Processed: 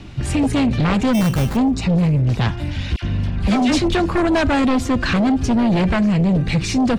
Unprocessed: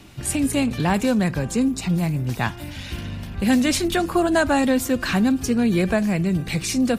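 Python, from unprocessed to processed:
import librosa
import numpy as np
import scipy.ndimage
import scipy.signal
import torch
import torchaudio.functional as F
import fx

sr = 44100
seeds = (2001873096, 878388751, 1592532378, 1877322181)

y = fx.low_shelf(x, sr, hz=170.0, db=9.5)
y = fx.fold_sine(y, sr, drive_db=9, ceiling_db=-5.0)
y = scipy.signal.sosfilt(scipy.signal.butter(2, 5200.0, 'lowpass', fs=sr, output='sos'), y)
y = fx.sample_hold(y, sr, seeds[0], rate_hz=2900.0, jitter_pct=0, at=(1.13, 1.55), fade=0.02)
y = fx.dispersion(y, sr, late='lows', ms=63.0, hz=1400.0, at=(2.96, 3.82))
y = y * 10.0 ** (-8.0 / 20.0)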